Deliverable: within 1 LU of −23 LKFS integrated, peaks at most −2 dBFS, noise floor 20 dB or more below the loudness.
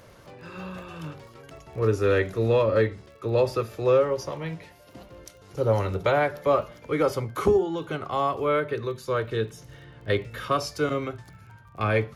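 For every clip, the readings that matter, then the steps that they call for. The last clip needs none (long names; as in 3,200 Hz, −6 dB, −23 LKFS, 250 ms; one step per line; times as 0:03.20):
crackle rate 28 per second; integrated loudness −25.5 LKFS; sample peak −9.5 dBFS; target loudness −23.0 LKFS
→ click removal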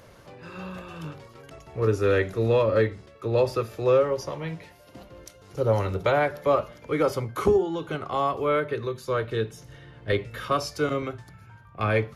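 crackle rate 0.082 per second; integrated loudness −25.5 LKFS; sample peak −9.5 dBFS; target loudness −23.0 LKFS
→ level +2.5 dB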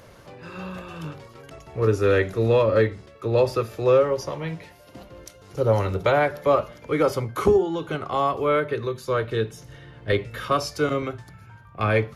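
integrated loudness −23.0 LKFS; sample peak −7.0 dBFS; background noise floor −49 dBFS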